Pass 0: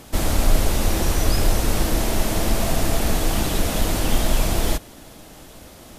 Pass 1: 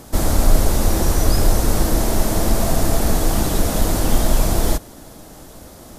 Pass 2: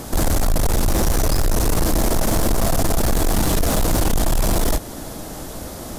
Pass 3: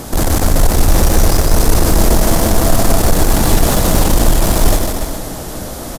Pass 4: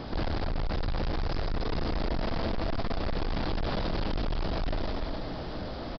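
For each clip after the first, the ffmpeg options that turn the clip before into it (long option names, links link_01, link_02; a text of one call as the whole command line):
ffmpeg -i in.wav -af "equalizer=frequency=2700:width=1.2:gain=-8,volume=3.5dB" out.wav
ffmpeg -i in.wav -filter_complex "[0:a]asplit=2[link_01][link_02];[link_02]acompressor=threshold=-21dB:ratio=6,volume=-2dB[link_03];[link_01][link_03]amix=inputs=2:normalize=0,asoftclip=type=tanh:threshold=-16.5dB,volume=3dB" out.wav
ffmpeg -i in.wav -af "aecho=1:1:150|285|406.5|515.8|614.3:0.631|0.398|0.251|0.158|0.1,volume=4.5dB" out.wav
ffmpeg -i in.wav -af "asoftclip=type=tanh:threshold=-17.5dB,aresample=11025,aresample=44100,volume=-9dB" out.wav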